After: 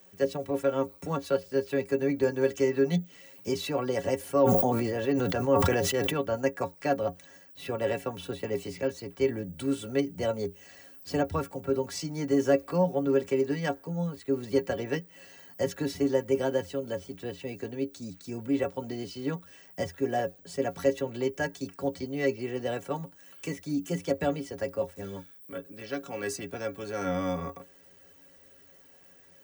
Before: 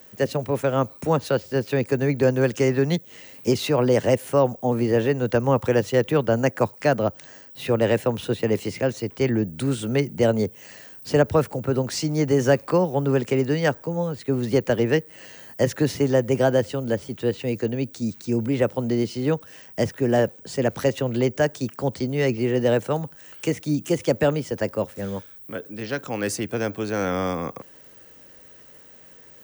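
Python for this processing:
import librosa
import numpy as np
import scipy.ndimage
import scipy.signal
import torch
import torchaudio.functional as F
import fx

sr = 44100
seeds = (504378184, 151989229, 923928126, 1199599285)

y = fx.stiff_resonator(x, sr, f0_hz=83.0, decay_s=0.23, stiffness=0.03)
y = fx.sustainer(y, sr, db_per_s=23.0, at=(4.17, 6.22))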